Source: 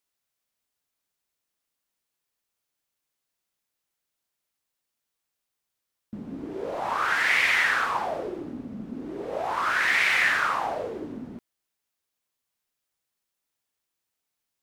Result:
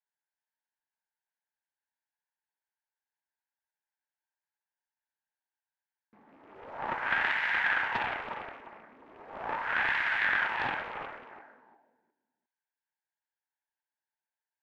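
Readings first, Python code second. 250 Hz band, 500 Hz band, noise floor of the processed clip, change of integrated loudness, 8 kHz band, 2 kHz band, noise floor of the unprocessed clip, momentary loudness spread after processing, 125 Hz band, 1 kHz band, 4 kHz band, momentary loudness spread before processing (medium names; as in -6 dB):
-14.0 dB, -10.5 dB, under -85 dBFS, -6.0 dB, under -20 dB, -5.0 dB, -84 dBFS, 18 LU, -8.0 dB, -6.0 dB, -9.0 dB, 18 LU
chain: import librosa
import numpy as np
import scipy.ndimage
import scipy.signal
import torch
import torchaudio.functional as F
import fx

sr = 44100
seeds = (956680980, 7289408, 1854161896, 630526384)

y = fx.double_bandpass(x, sr, hz=1200.0, octaves=0.82)
y = fx.echo_feedback(y, sr, ms=357, feedback_pct=28, wet_db=-7)
y = fx.doppler_dist(y, sr, depth_ms=0.54)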